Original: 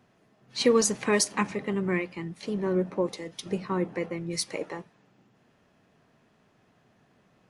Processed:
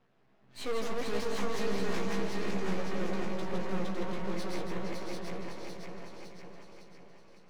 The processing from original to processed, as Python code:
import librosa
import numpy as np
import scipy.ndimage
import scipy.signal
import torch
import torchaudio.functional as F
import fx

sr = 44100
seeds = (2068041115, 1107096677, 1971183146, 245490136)

p1 = fx.reverse_delay_fb(x, sr, ms=279, feedback_pct=70, wet_db=-3.5)
p2 = scipy.signal.sosfilt(scipy.signal.butter(2, 100.0, 'highpass', fs=sr, output='sos'), p1)
p3 = fx.high_shelf(p2, sr, hz=8200.0, db=9.5)
p4 = fx.tube_stage(p3, sr, drive_db=26.0, bias=0.6)
p5 = fx.air_absorb(p4, sr, metres=190.0)
p6 = fx.echo_feedback(p5, sr, ms=468, feedback_pct=47, wet_db=-11.0)
p7 = np.maximum(p6, 0.0)
p8 = fx.doubler(p7, sr, ms=15.0, db=-5)
y = p8 + fx.echo_multitap(p8, sr, ms=(163, 743), db=(-5.5, -3.5), dry=0)